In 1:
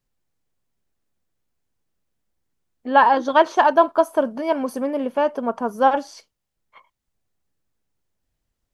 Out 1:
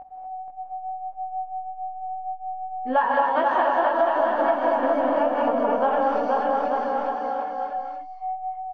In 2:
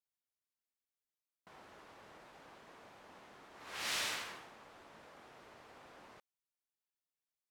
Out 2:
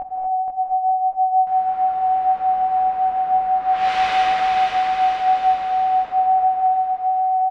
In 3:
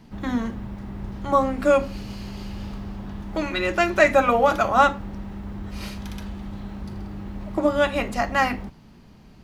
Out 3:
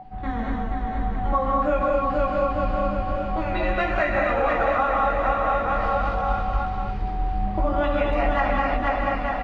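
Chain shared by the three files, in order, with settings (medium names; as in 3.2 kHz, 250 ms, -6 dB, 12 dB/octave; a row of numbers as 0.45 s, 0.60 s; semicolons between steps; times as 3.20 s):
wow and flutter 25 cents; whistle 750 Hz -32 dBFS; chorus voices 4, 0.45 Hz, delay 20 ms, depth 3.5 ms; peaking EQ 300 Hz -3.5 dB 1.5 oct; hum notches 60/120/180/240 Hz; on a send: bouncing-ball echo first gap 480 ms, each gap 0.85×, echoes 5; on the sum: gated-style reverb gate 270 ms rising, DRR -1 dB; compression 5:1, threshold -20 dBFS; low-pass 2.4 kHz 12 dB/octave; bass shelf 84 Hz +8 dB; peak normalisation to -9 dBFS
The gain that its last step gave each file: +2.0 dB, +15.5 dB, +1.5 dB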